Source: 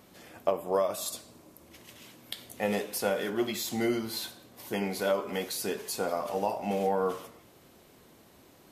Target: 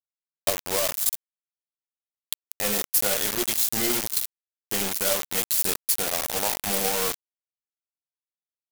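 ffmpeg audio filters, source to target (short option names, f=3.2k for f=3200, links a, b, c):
-af "acrusher=bits=4:mix=0:aa=0.000001,aeval=exprs='0.282*(cos(1*acos(clip(val(0)/0.282,-1,1)))-cos(1*PI/2))+0.0794*(cos(6*acos(clip(val(0)/0.282,-1,1)))-cos(6*PI/2))+0.0631*(cos(8*acos(clip(val(0)/0.282,-1,1)))-cos(8*PI/2))':c=same,crystalizer=i=3.5:c=0,volume=-2dB"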